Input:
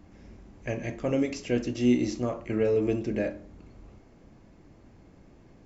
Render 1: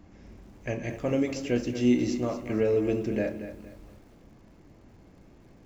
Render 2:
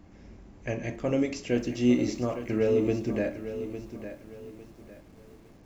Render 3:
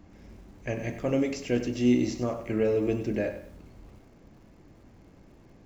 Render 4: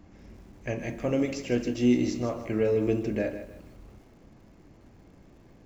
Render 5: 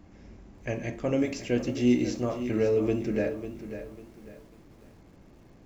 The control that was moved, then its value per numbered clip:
feedback echo at a low word length, delay time: 231, 855, 97, 154, 547 milliseconds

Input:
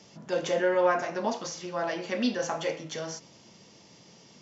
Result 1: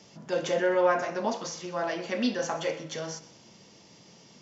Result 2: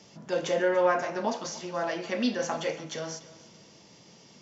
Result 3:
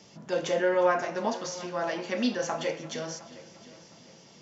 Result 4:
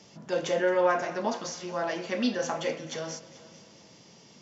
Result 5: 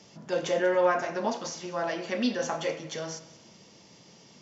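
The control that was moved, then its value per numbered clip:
echo machine with several playback heads, delay time: 63, 144, 356, 219, 94 milliseconds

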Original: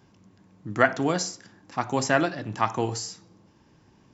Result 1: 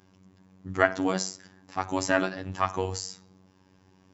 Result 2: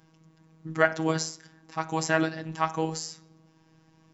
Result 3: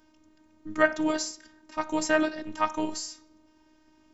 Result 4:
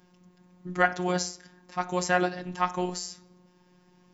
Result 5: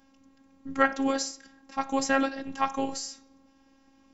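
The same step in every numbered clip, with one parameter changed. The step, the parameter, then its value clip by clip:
phases set to zero, frequency: 94, 160, 310, 180, 270 Hertz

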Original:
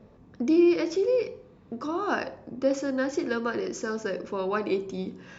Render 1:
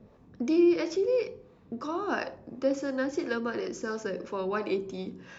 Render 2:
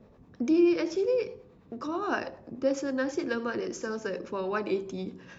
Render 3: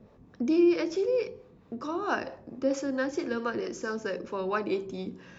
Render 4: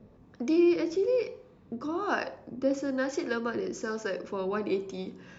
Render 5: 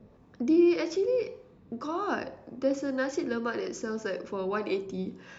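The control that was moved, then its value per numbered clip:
two-band tremolo in antiphase, speed: 2.9, 9.5, 4.5, 1.1, 1.8 Hertz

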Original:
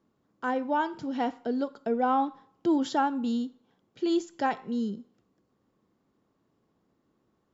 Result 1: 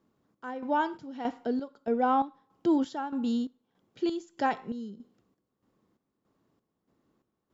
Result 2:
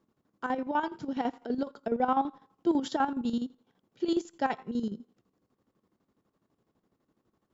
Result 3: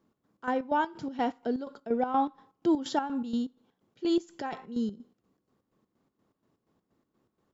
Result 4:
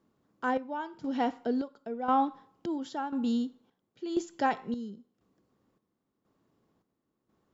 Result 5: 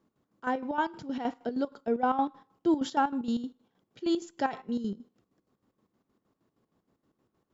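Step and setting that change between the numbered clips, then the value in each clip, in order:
square-wave tremolo, speed: 1.6, 12, 4.2, 0.96, 6.4 Hertz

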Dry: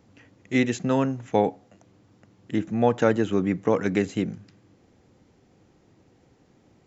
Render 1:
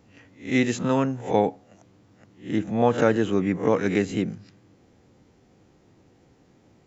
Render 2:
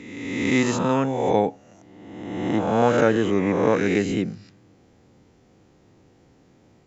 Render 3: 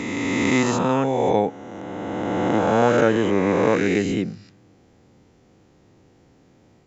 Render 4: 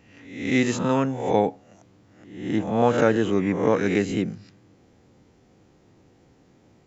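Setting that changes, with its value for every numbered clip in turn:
peak hold with a rise ahead of every peak, rising 60 dB in: 0.33, 1.41, 2.95, 0.68 seconds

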